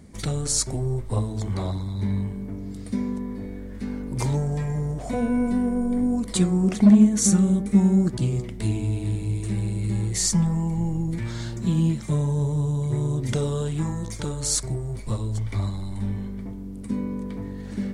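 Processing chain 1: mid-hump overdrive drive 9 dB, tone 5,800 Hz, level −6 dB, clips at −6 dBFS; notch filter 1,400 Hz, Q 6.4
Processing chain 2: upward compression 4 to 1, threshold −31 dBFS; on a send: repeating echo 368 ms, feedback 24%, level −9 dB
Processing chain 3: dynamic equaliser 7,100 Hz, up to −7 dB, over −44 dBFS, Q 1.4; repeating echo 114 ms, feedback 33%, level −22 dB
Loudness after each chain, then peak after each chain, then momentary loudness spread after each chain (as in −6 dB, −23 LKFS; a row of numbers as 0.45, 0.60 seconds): −26.5, −24.0, −24.5 LKFS; −8.5, −5.5, −6.0 dBFS; 13, 12, 12 LU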